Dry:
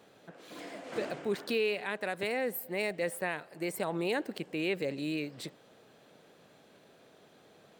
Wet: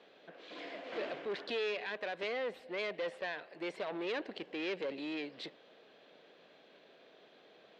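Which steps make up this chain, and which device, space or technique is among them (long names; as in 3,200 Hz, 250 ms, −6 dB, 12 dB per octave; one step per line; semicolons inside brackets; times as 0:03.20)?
guitar amplifier (tube saturation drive 33 dB, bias 0.4; bass and treble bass −12 dB, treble +11 dB; loudspeaker in its box 78–3,500 Hz, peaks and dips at 120 Hz −8 dB, 860 Hz −4 dB, 1,300 Hz −4 dB)
level +2 dB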